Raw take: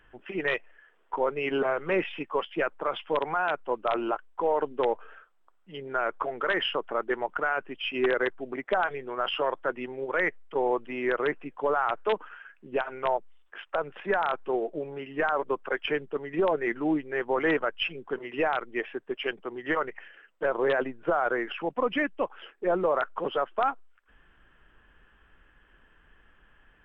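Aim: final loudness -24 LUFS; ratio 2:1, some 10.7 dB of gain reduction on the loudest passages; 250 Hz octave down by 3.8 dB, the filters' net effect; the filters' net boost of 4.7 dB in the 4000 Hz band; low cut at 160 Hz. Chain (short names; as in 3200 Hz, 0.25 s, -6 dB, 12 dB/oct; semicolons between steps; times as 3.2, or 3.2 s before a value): HPF 160 Hz; bell 250 Hz -5.5 dB; bell 4000 Hz +7.5 dB; compressor 2:1, threshold -42 dBFS; gain +15 dB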